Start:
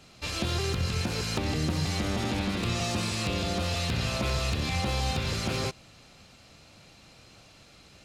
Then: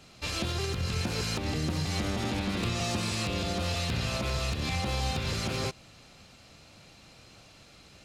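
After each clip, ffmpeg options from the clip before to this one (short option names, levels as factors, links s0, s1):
-af "alimiter=limit=0.0944:level=0:latency=1:release=165"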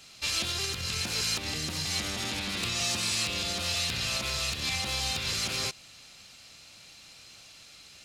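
-af "tiltshelf=f=1500:g=-8"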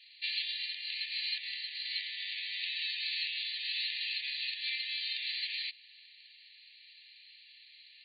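-af "afftfilt=real='re*between(b*sr/4096,1700,4700)':imag='im*between(b*sr/4096,1700,4700)':win_size=4096:overlap=0.75,volume=0.708"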